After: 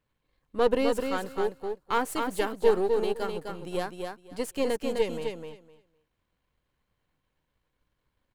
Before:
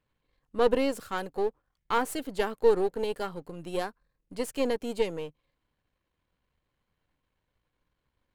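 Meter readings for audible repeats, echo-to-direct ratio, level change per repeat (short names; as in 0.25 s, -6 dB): 2, -5.0 dB, -15.5 dB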